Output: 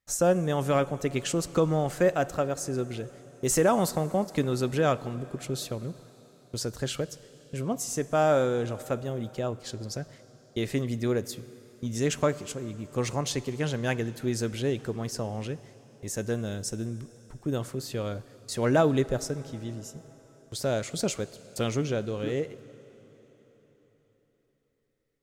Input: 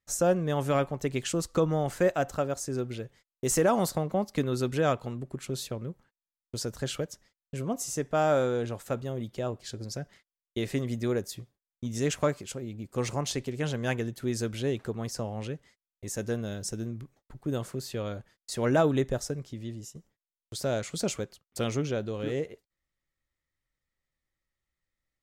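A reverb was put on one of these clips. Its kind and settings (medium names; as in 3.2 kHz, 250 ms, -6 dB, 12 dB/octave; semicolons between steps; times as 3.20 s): plate-style reverb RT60 4.5 s, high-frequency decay 0.9×, DRR 16.5 dB; trim +1.5 dB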